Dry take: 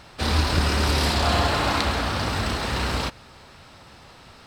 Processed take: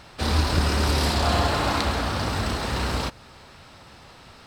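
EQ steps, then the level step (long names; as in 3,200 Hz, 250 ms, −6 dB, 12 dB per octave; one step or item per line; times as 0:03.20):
dynamic equaliser 2,500 Hz, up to −3 dB, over −39 dBFS, Q 0.72
0.0 dB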